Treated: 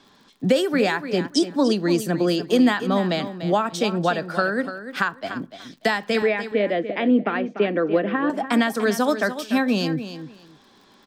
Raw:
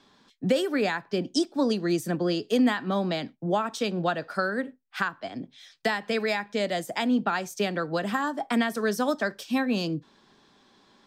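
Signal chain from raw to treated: crackle 54/s -50 dBFS; 6.22–8.3 speaker cabinet 190–2700 Hz, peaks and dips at 310 Hz +8 dB, 480 Hz +6 dB, 880 Hz -9 dB, 1400 Hz -5 dB; on a send: feedback echo 0.293 s, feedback 19%, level -11.5 dB; on the sum: gain +5 dB

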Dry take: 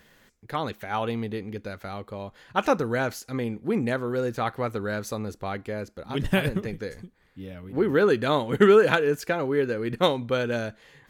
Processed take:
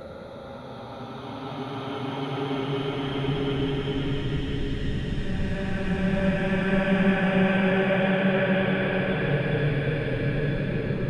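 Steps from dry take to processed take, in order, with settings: treble ducked by the level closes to 2200 Hz, closed at -17.5 dBFS; Paulstretch 22×, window 0.25 s, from 6.02

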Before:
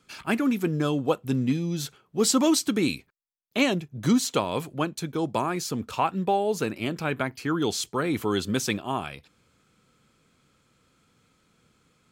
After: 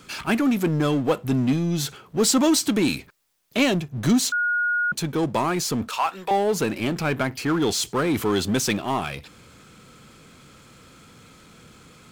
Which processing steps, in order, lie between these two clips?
5.88–6.31 HPF 800 Hz 12 dB/oct; power-law curve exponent 0.7; 4.32–4.92 bleep 1440 Hz -19.5 dBFS

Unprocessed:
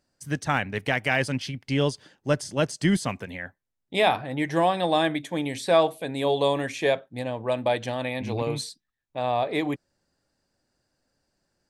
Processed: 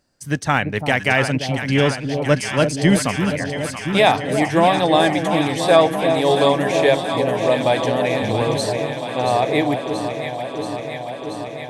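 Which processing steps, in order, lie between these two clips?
2.89–3.37 high shelf 9100 Hz +9.5 dB; on a send: echo with dull and thin repeats by turns 0.34 s, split 800 Hz, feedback 87%, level -6.5 dB; on the sum: gain +6.5 dB

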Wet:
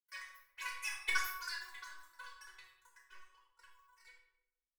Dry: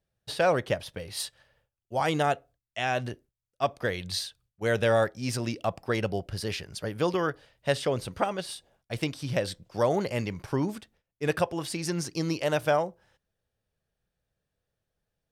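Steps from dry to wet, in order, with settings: Doppler pass-by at 3.41, 17 m/s, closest 4.9 m; elliptic high-pass 270 Hz, stop band 40 dB; sample leveller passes 2; resonator bank A#2 sus4, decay 0.61 s; flange 0.61 Hz, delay 6.4 ms, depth 8.6 ms, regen +46%; wide varispeed 3.2×; shoebox room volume 2500 m³, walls furnished, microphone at 5 m; gain +9.5 dB

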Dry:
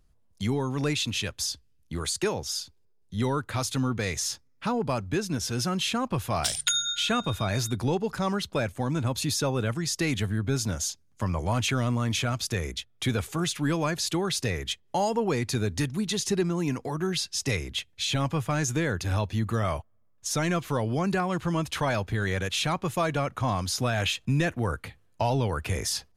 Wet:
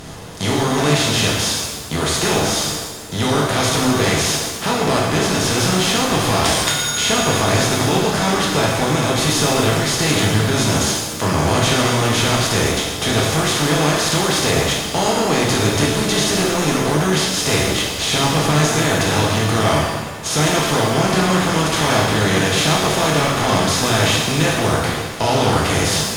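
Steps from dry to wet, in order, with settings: per-bin compression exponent 0.4; shimmer reverb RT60 1.2 s, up +7 st, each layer -8 dB, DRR -3.5 dB; gain -1 dB

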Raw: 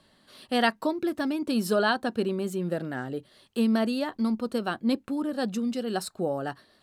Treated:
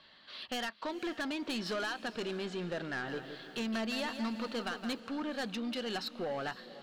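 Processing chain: LPF 4200 Hz 24 dB/oct; tilt shelf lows -8.5 dB, about 790 Hz; compressor 16:1, threshold -27 dBFS, peak gain reduction 14 dB; soft clip -31.5 dBFS, distortion -10 dB; diffused feedback echo 0.482 s, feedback 44%, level -15 dB; 2.9–5 lo-fi delay 0.166 s, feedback 35%, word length 11-bit, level -8.5 dB

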